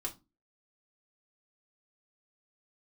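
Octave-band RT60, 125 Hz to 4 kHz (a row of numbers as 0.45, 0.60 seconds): 0.35, 0.40, 0.25, 0.25, 0.20, 0.20 seconds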